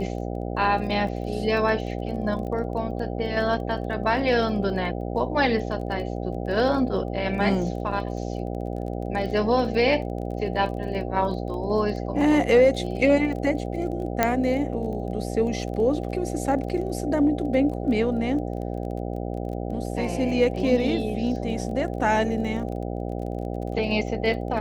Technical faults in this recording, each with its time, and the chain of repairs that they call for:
mains buzz 60 Hz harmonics 13 −30 dBFS
surface crackle 22 per second −34 dBFS
0:14.23: click −5 dBFS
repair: click removal
hum removal 60 Hz, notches 13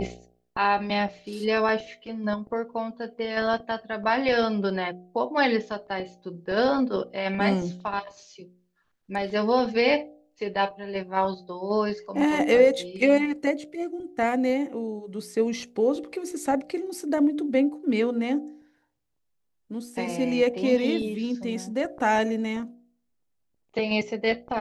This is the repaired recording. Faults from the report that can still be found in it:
none of them is left

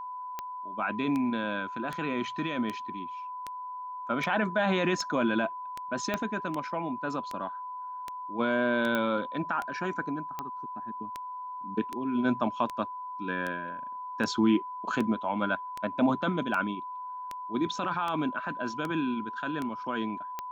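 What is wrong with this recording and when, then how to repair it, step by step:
scratch tick 78 rpm −20 dBFS
whistle 1,000 Hz −36 dBFS
0:06.14: click −15 dBFS
0:08.95: click −16 dBFS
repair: click removal
notch filter 1,000 Hz, Q 30

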